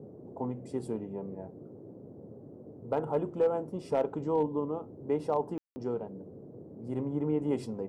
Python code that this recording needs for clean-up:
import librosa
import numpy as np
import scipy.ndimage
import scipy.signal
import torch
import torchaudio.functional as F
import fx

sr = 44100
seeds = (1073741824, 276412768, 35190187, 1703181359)

y = fx.fix_declip(x, sr, threshold_db=-19.5)
y = fx.fix_ambience(y, sr, seeds[0], print_start_s=2.32, print_end_s=2.82, start_s=5.58, end_s=5.76)
y = fx.noise_reduce(y, sr, print_start_s=2.32, print_end_s=2.82, reduce_db=27.0)